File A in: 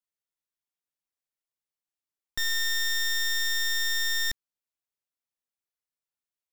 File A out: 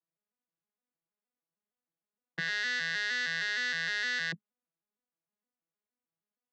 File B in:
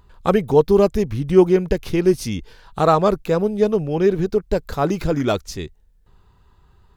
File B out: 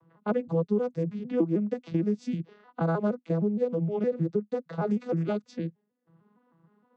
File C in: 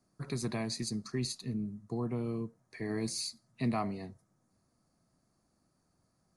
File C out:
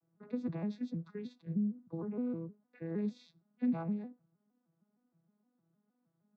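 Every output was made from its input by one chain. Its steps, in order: vocoder on a broken chord major triad, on E3, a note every 155 ms; level-controlled noise filter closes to 2.1 kHz, open at -16 dBFS; compression 2.5:1, threshold -28 dBFS

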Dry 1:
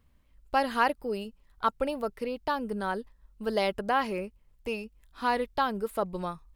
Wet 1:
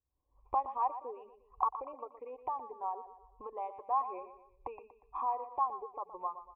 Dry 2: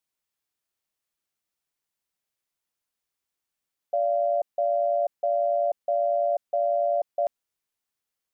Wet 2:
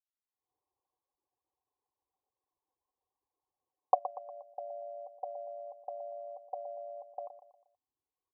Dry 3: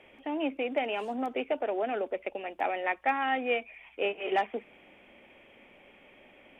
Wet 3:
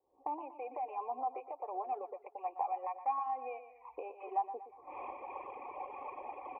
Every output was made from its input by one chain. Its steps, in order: recorder AGC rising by 55 dB/s; level-controlled noise filter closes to 300 Hz, open at -25 dBFS; high-pass 69 Hz 6 dB/octave; reverb removal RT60 1.8 s; cascade formant filter a; static phaser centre 1 kHz, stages 8; on a send: feedback delay 119 ms, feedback 43%, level -12 dB; on the sum: trim +6 dB

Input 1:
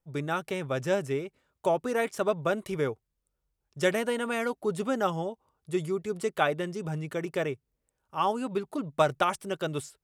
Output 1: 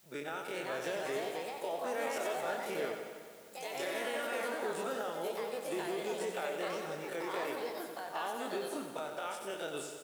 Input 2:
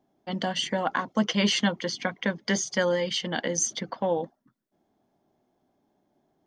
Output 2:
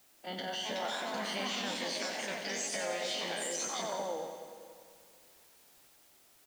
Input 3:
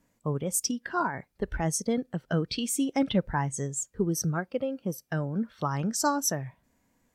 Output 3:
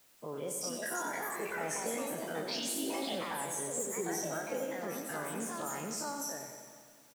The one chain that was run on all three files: every event in the spectrogram widened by 60 ms; high-pass 330 Hz 12 dB/octave; band-stop 1.1 kHz, Q 8; compression, threshold -26 dBFS; peak limiter -21 dBFS; added noise white -57 dBFS; ever faster or slower copies 434 ms, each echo +3 st, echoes 2; feedback delay 92 ms, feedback 59%, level -8 dB; plate-style reverb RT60 2.4 s, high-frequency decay 0.85×, pre-delay 105 ms, DRR 10.5 dB; trim -8 dB

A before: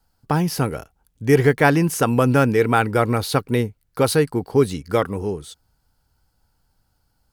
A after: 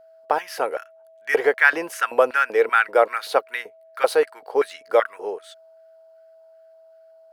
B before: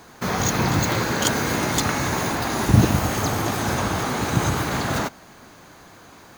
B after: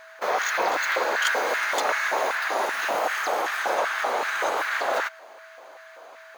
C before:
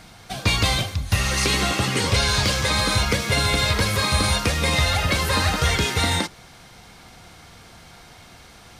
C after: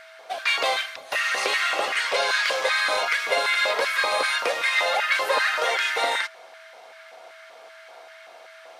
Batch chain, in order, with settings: LFO high-pass square 2.6 Hz 560–1600 Hz; tone controls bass -14 dB, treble -9 dB; whistle 650 Hz -47 dBFS; trim -1 dB

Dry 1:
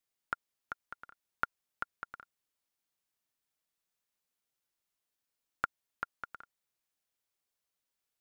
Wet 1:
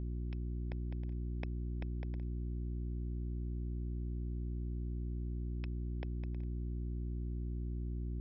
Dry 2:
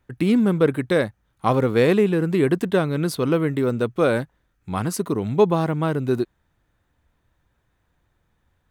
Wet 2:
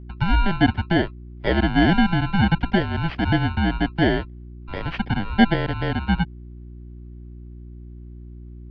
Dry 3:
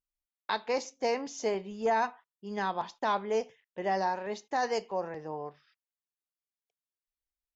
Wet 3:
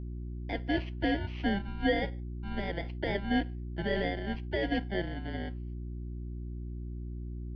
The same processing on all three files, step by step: bit-reversed sample order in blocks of 32 samples; mistuned SSB -190 Hz 210–3600 Hz; mains buzz 60 Hz, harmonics 6, -41 dBFS -7 dB/octave; trim +2.5 dB

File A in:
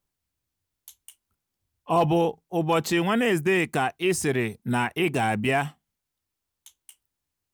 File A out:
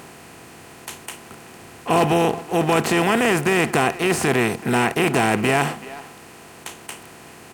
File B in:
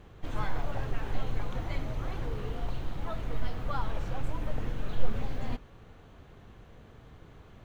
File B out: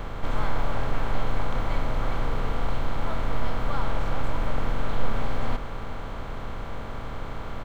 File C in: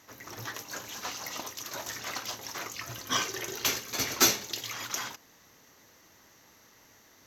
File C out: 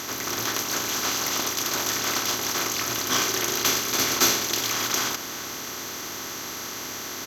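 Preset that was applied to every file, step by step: spectral levelling over time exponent 0.4; speakerphone echo 380 ms, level -16 dB

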